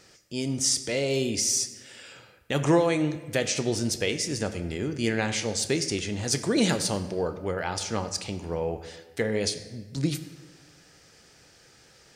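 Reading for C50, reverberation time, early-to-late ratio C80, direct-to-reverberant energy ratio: 12.0 dB, 1.3 s, 13.5 dB, 9.5 dB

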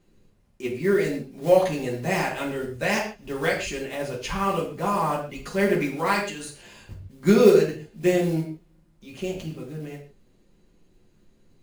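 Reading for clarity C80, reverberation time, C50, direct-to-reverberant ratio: 10.0 dB, not exponential, 6.5 dB, -4.0 dB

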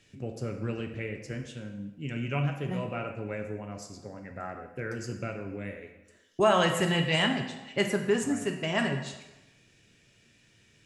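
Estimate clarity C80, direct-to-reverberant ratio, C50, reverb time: 9.0 dB, 4.0 dB, 7.0 dB, 1.0 s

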